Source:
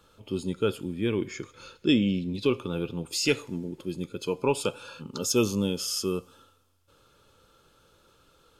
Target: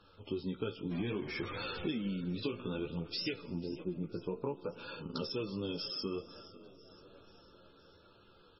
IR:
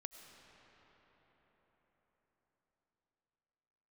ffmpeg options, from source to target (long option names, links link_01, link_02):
-filter_complex "[0:a]asettb=1/sr,asplit=3[link_01][link_02][link_03];[link_01]atrim=end=0.914[link_04];[link_02]atrim=start=0.91:end=1.97,asetpts=PTS-STARTPTS,afade=type=in:duration=0.004:curve=qsin,afade=type=out:start_time=1.056:duration=0.004:curve=qsin,aeval=exprs='val(0)+0.5*0.0188*sgn(val(0))':channel_layout=same[link_05];[link_03]atrim=start=1.966[link_06];[link_04][link_05]acrossfade=duration=0.004:curve1=hsin:curve2=qsin[link_07];[link_07][link_06]acrossfade=duration=0.004:curve1=qsin:curve2=hsin,flanger=delay=9.3:depth=9.4:regen=12:speed=0.61:shape=triangular,acompressor=threshold=-34dB:ratio=20,asplit=3[link_08][link_09][link_10];[link_08]afade=type=out:start_time=3.5:duration=0.02[link_11];[link_09]lowpass=1200,afade=type=in:start_time=3.5:duration=0.02,afade=type=out:start_time=4.77:duration=0.02[link_12];[link_10]afade=type=in:start_time=4.77:duration=0.02[link_13];[link_11][link_12][link_13]amix=inputs=3:normalize=0,asplit=5[link_14][link_15][link_16][link_17][link_18];[link_15]adelay=496,afreqshift=56,volume=-19dB[link_19];[link_16]adelay=992,afreqshift=112,volume=-24.5dB[link_20];[link_17]adelay=1488,afreqshift=168,volume=-30dB[link_21];[link_18]adelay=1984,afreqshift=224,volume=-35.5dB[link_22];[link_14][link_19][link_20][link_21][link_22]amix=inputs=5:normalize=0,asplit=2[link_23][link_24];[1:a]atrim=start_sample=2205,asetrate=24255,aresample=44100[link_25];[link_24][link_25]afir=irnorm=-1:irlink=0,volume=-11.5dB[link_26];[link_23][link_26]amix=inputs=2:normalize=0" -ar 24000 -c:a libmp3lame -b:a 16k